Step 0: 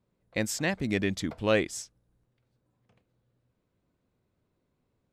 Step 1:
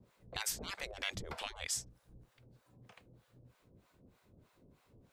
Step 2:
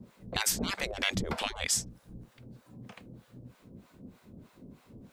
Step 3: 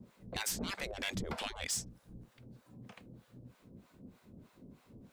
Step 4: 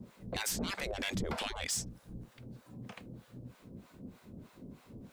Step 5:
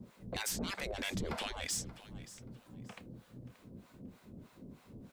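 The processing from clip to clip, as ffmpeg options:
ffmpeg -i in.wav -filter_complex "[0:a]afftfilt=real='re*lt(hypot(re,im),0.0398)':imag='im*lt(hypot(re,im),0.0398)':win_size=1024:overlap=0.75,acrossover=split=290[link_01][link_02];[link_02]acompressor=threshold=-48dB:ratio=5[link_03];[link_01][link_03]amix=inputs=2:normalize=0,acrossover=split=680[link_04][link_05];[link_04]aeval=exprs='val(0)*(1-1/2+1/2*cos(2*PI*3.2*n/s))':channel_layout=same[link_06];[link_05]aeval=exprs='val(0)*(1-1/2-1/2*cos(2*PI*3.2*n/s))':channel_layout=same[link_07];[link_06][link_07]amix=inputs=2:normalize=0,volume=15dB" out.wav
ffmpeg -i in.wav -af "equalizer=frequency=220:width_type=o:width=1:gain=10,volume=8.5dB" out.wav
ffmpeg -i in.wav -af "asoftclip=type=tanh:threshold=-24.5dB,volume=-4.5dB" out.wav
ffmpeg -i in.wav -af "alimiter=level_in=10dB:limit=-24dB:level=0:latency=1:release=30,volume=-10dB,volume=5.5dB" out.wav
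ffmpeg -i in.wav -af "aecho=1:1:580|1160:0.141|0.0311,volume=-2dB" out.wav

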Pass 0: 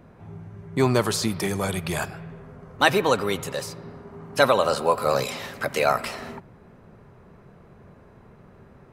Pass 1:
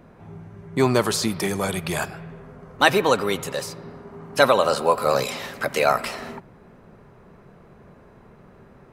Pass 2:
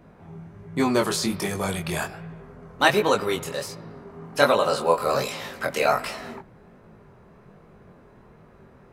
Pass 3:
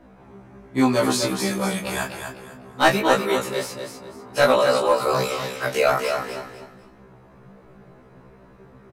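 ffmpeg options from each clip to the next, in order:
ffmpeg -i in.wav -af "equalizer=frequency=92:width=1.3:gain=-5,volume=2dB" out.wav
ffmpeg -i in.wav -af "flanger=delay=18.5:depth=6.1:speed=1.3,volume=1dB" out.wav
ffmpeg -i in.wav -filter_complex "[0:a]aecho=1:1:249|498|747:0.447|0.121|0.0326,acrossover=split=710[link_01][link_02];[link_02]aeval=exprs='clip(val(0),-1,0.126)':channel_layout=same[link_03];[link_01][link_03]amix=inputs=2:normalize=0,afftfilt=real='re*1.73*eq(mod(b,3),0)':imag='im*1.73*eq(mod(b,3),0)':win_size=2048:overlap=0.75,volume=4dB" out.wav

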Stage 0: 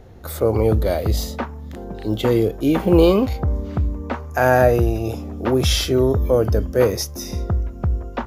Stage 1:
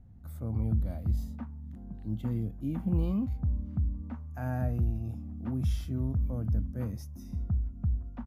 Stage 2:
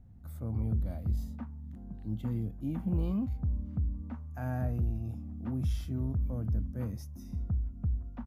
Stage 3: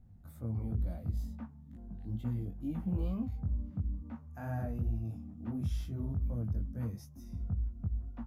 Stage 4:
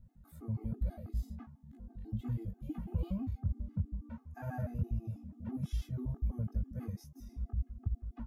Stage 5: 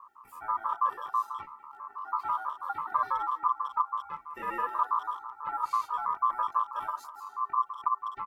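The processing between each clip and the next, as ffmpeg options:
ffmpeg -i in.wav -af "firequalizer=gain_entry='entry(230,0);entry(400,-24);entry(710,-15);entry(4100,-23);entry(9000,-16)':delay=0.05:min_phase=1,volume=-8.5dB" out.wav
ffmpeg -i in.wav -af "asoftclip=type=tanh:threshold=-20dB,volume=-1dB" out.wav
ffmpeg -i in.wav -af "flanger=delay=17:depth=4.6:speed=2.2" out.wav
ffmpeg -i in.wav -af "afftfilt=real='re*gt(sin(2*PI*6.1*pts/sr)*(1-2*mod(floor(b*sr/1024/220),2)),0)':imag='im*gt(sin(2*PI*6.1*pts/sr)*(1-2*mod(floor(b*sr/1024/220),2)),0)':win_size=1024:overlap=0.75,volume=1.5dB" out.wav
ffmpeg -i in.wav -filter_complex "[0:a]aeval=exprs='val(0)*sin(2*PI*1100*n/s)':channel_layout=same,asplit=2[link_01][link_02];[link_02]adelay=200,highpass=300,lowpass=3400,asoftclip=type=hard:threshold=-32.5dB,volume=-15dB[link_03];[link_01][link_03]amix=inputs=2:normalize=0,volume=8.5dB" out.wav

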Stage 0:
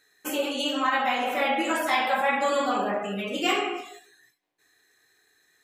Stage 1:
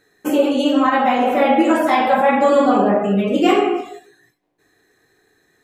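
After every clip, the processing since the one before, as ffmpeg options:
ffmpeg -i in.wav -af "tiltshelf=frequency=970:gain=8.5,volume=8dB" out.wav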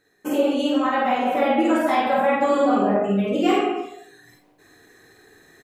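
ffmpeg -i in.wav -filter_complex "[0:a]areverse,acompressor=mode=upward:threshold=-35dB:ratio=2.5,areverse,asplit=2[link_01][link_02];[link_02]adelay=50,volume=-2.5dB[link_03];[link_01][link_03]amix=inputs=2:normalize=0,volume=-6.5dB" out.wav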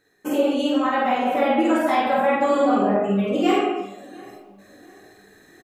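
ffmpeg -i in.wav -filter_complex "[0:a]asplit=2[link_01][link_02];[link_02]adelay=697,lowpass=frequency=1900:poles=1,volume=-22dB,asplit=2[link_03][link_04];[link_04]adelay=697,lowpass=frequency=1900:poles=1,volume=0.41,asplit=2[link_05][link_06];[link_06]adelay=697,lowpass=frequency=1900:poles=1,volume=0.41[link_07];[link_01][link_03][link_05][link_07]amix=inputs=4:normalize=0" out.wav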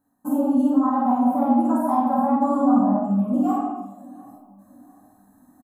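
ffmpeg -i in.wav -af "firequalizer=gain_entry='entry(170,0);entry(260,14);entry(380,-23);entry(570,-3);entry(940,7);entry(2100,-29);entry(10000,3)':delay=0.05:min_phase=1,volume=-3.5dB" out.wav

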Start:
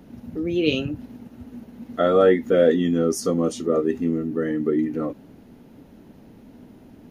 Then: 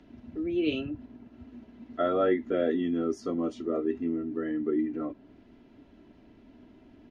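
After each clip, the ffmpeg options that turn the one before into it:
ffmpeg -i in.wav -filter_complex "[0:a]lowpass=3200,aecho=1:1:3:0.52,acrossover=split=160|2000[link_01][link_02][link_03];[link_03]acompressor=mode=upward:threshold=-58dB:ratio=2.5[link_04];[link_01][link_02][link_04]amix=inputs=3:normalize=0,volume=-8.5dB" out.wav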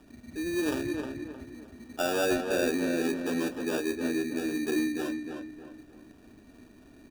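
ffmpeg -i in.wav -filter_complex "[0:a]asplit=2[link_01][link_02];[link_02]asoftclip=type=tanh:threshold=-26.5dB,volume=-4.5dB[link_03];[link_01][link_03]amix=inputs=2:normalize=0,acrusher=samples=21:mix=1:aa=0.000001,asplit=2[link_04][link_05];[link_05]adelay=310,lowpass=frequency=2600:poles=1,volume=-4.5dB,asplit=2[link_06][link_07];[link_07]adelay=310,lowpass=frequency=2600:poles=1,volume=0.39,asplit=2[link_08][link_09];[link_09]adelay=310,lowpass=frequency=2600:poles=1,volume=0.39,asplit=2[link_10][link_11];[link_11]adelay=310,lowpass=frequency=2600:poles=1,volume=0.39,asplit=2[link_12][link_13];[link_13]adelay=310,lowpass=frequency=2600:poles=1,volume=0.39[link_14];[link_04][link_06][link_08][link_10][link_12][link_14]amix=inputs=6:normalize=0,volume=-4.5dB" out.wav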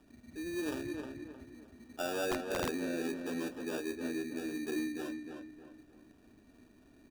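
ffmpeg -i in.wav -af "aeval=exprs='(mod(8.41*val(0)+1,2)-1)/8.41':channel_layout=same,volume=-7.5dB" out.wav

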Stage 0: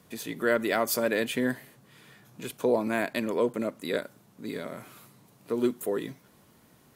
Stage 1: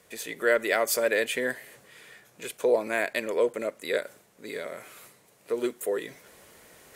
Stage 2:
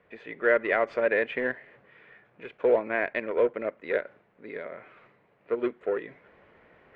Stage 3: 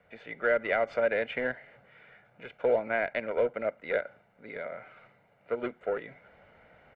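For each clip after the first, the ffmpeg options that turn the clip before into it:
ffmpeg -i in.wav -af "equalizer=frequency=125:width_type=o:width=1:gain=-9,equalizer=frequency=250:width_type=o:width=1:gain=-8,equalizer=frequency=500:width_type=o:width=1:gain=7,equalizer=frequency=1000:width_type=o:width=1:gain=-3,equalizer=frequency=2000:width_type=o:width=1:gain=7,equalizer=frequency=8000:width_type=o:width=1:gain=6,areverse,acompressor=mode=upward:threshold=-43dB:ratio=2.5,areverse,volume=-1.5dB" out.wav
ffmpeg -i in.wav -filter_complex "[0:a]asplit=2[link_01][link_02];[link_02]acrusher=bits=3:mix=0:aa=0.5,volume=-9dB[link_03];[link_01][link_03]amix=inputs=2:normalize=0,lowpass=frequency=2400:width=0.5412,lowpass=frequency=2400:width=1.3066,volume=-2dB" out.wav
ffmpeg -i in.wav -filter_complex "[0:a]acrossover=split=450|3000[link_01][link_02][link_03];[link_02]acompressor=threshold=-26dB:ratio=6[link_04];[link_01][link_04][link_03]amix=inputs=3:normalize=0,aecho=1:1:1.4:0.56,volume=-1dB" out.wav

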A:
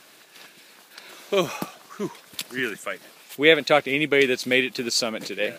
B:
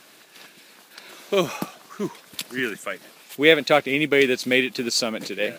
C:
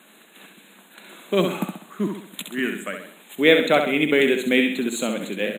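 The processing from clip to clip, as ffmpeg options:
ffmpeg -i in.wav -filter_complex "[0:a]equalizer=frequency=230:width_type=o:width=1.1:gain=2.5,asplit=2[link_01][link_02];[link_02]acrusher=bits=5:mode=log:mix=0:aa=0.000001,volume=-5dB[link_03];[link_01][link_03]amix=inputs=2:normalize=0,volume=-3.5dB" out.wav
ffmpeg -i in.wav -af "asuperstop=centerf=5200:order=12:qfactor=2,lowshelf=frequency=130:width_type=q:width=3:gain=-13.5,aecho=1:1:66|132|198|264|330:0.473|0.203|0.0875|0.0376|0.0162,volume=-1.5dB" out.wav

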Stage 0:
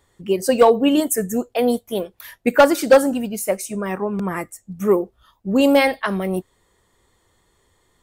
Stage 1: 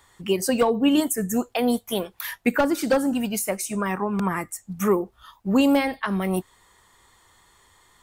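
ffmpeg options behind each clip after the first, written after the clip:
ffmpeg -i in.wav -filter_complex "[0:a]lowshelf=frequency=700:width_type=q:width=1.5:gain=-7,acrossover=split=400[link_01][link_02];[link_02]acompressor=threshold=-33dB:ratio=5[link_03];[link_01][link_03]amix=inputs=2:normalize=0,volume=7dB" out.wav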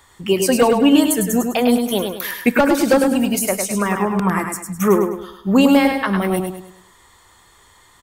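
ffmpeg -i in.wav -af "aecho=1:1:103|206|309|412|515:0.531|0.202|0.0767|0.0291|0.0111,volume=5.5dB" out.wav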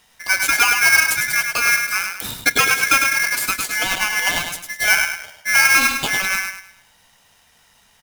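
ffmpeg -i in.wav -filter_complex "[0:a]asplit=2[link_01][link_02];[link_02]aeval=exprs='val(0)*gte(abs(val(0)),0.0398)':channel_layout=same,volume=-9dB[link_03];[link_01][link_03]amix=inputs=2:normalize=0,aeval=exprs='val(0)*sgn(sin(2*PI*1900*n/s))':channel_layout=same,volume=-4.5dB" out.wav

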